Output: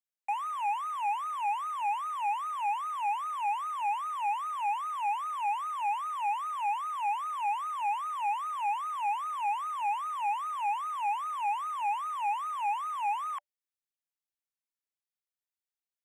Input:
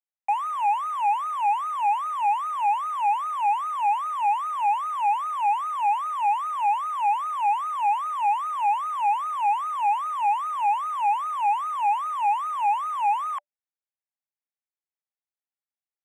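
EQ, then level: high-pass 1.4 kHz 6 dB/octave; -2.5 dB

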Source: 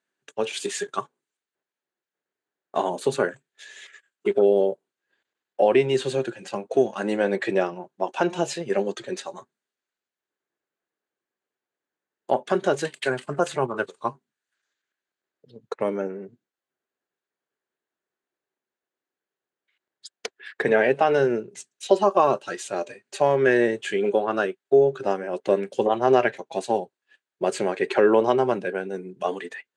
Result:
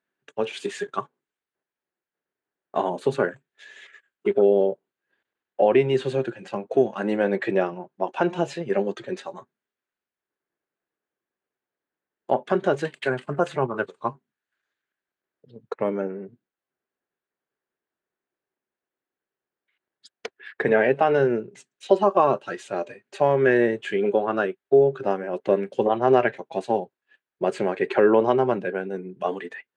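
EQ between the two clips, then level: tone controls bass +3 dB, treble -12 dB; 0.0 dB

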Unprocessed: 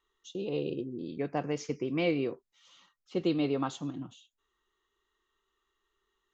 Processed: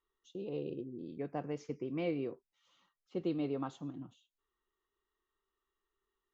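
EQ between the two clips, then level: treble shelf 2.1 kHz -9.5 dB; -6.0 dB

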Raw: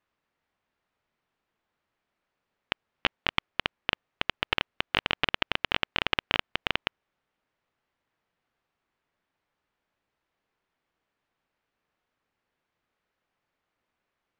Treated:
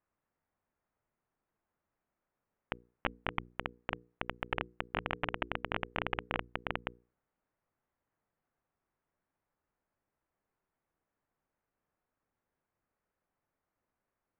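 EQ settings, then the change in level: Gaussian low-pass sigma 4.1 samples; bass shelf 190 Hz +3.5 dB; hum notches 60/120/180/240/300/360/420/480 Hz; -3.5 dB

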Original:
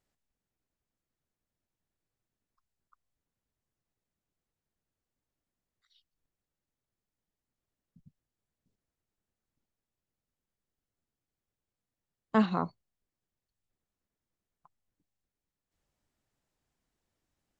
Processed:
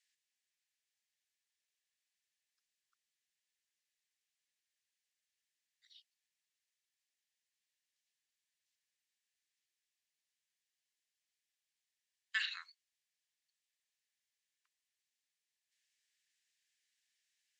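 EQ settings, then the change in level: Chebyshev high-pass 1.7 kHz, order 5; distance through air 71 m; treble shelf 4 kHz +11 dB; +4.0 dB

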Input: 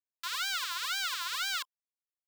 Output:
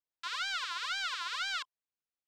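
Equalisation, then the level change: distance through air 100 m; 0.0 dB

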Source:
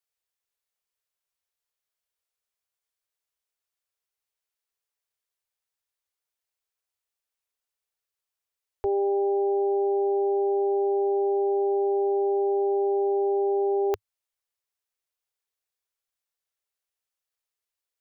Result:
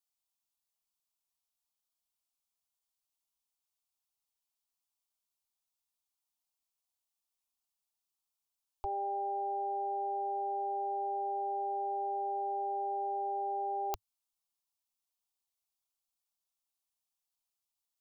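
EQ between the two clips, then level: peaking EQ 430 Hz -14.5 dB 0.59 oct; static phaser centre 470 Hz, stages 6; 0.0 dB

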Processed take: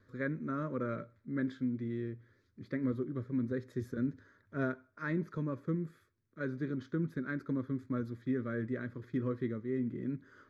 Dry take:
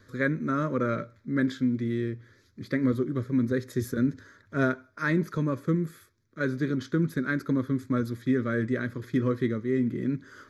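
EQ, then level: low-pass 1.9 kHz 6 dB/octave; -8.5 dB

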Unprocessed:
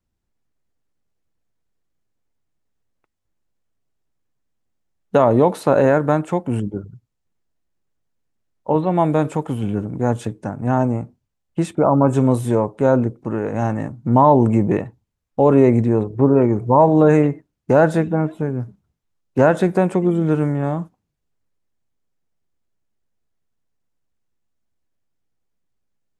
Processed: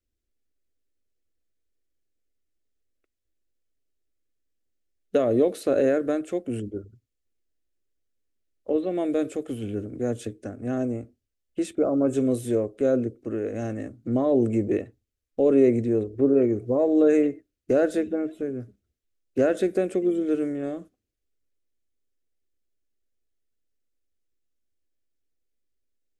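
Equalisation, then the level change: dynamic bell 1.3 kHz, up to -3 dB, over -31 dBFS, Q 0.92; static phaser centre 380 Hz, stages 4; -3.5 dB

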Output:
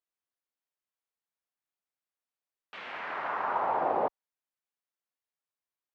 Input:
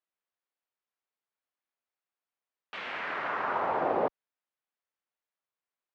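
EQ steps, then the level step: dynamic bell 860 Hz, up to +7 dB, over -43 dBFS, Q 1.4; -4.5 dB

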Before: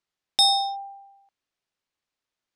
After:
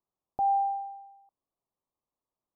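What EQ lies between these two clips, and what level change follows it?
steep low-pass 1.2 kHz 72 dB/octave; 0.0 dB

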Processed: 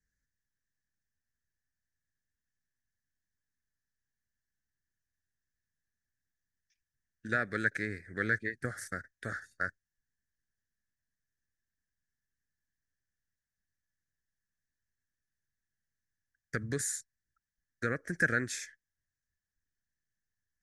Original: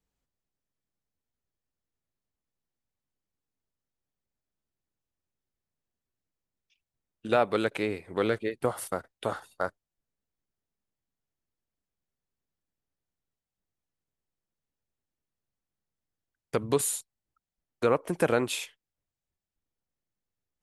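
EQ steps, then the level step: FFT filter 100 Hz 0 dB, 170 Hz -4 dB, 240 Hz -5 dB, 390 Hz -11 dB, 650 Hz -16 dB, 970 Hz -29 dB, 1.7 kHz +13 dB, 2.8 kHz -21 dB, 5.9 kHz +3 dB, 14 kHz -17 dB; 0.0 dB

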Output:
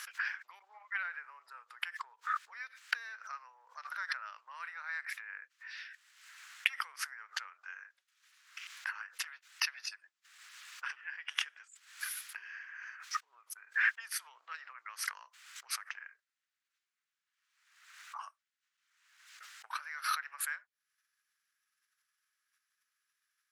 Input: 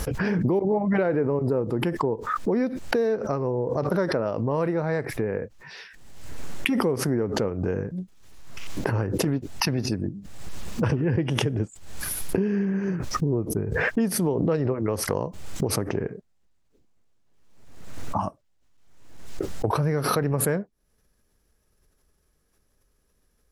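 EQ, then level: steep high-pass 1.4 kHz 36 dB/octave; tilt EQ -3.5 dB/octave; +1.0 dB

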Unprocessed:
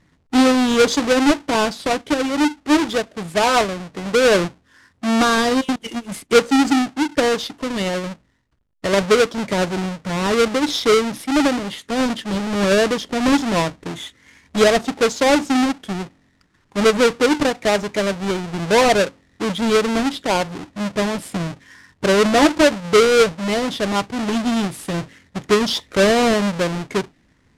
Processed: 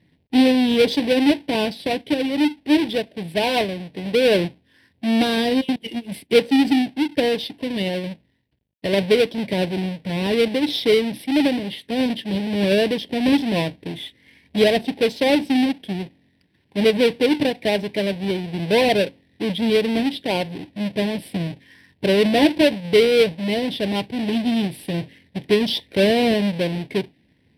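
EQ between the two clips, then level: high-pass 83 Hz 12 dB/octave; static phaser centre 3 kHz, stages 4; 0.0 dB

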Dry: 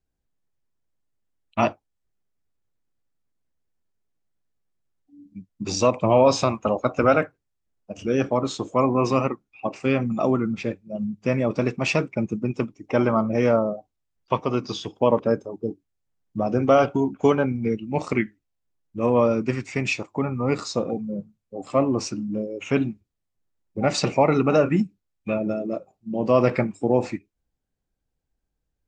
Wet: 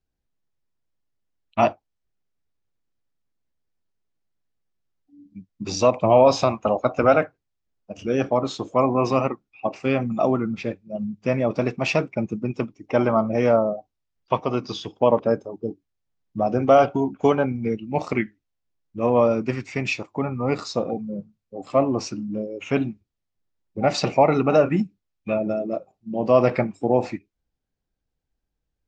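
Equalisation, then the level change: Chebyshev low-pass 5.3 kHz, order 2; dynamic bell 710 Hz, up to +6 dB, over -37 dBFS, Q 2.4; 0.0 dB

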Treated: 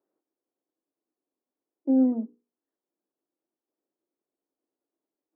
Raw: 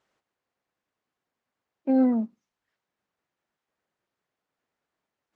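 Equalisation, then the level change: ladder band-pass 350 Hz, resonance 60%; hum notches 60/120/180/240/300/360/420/480 Hz; +8.5 dB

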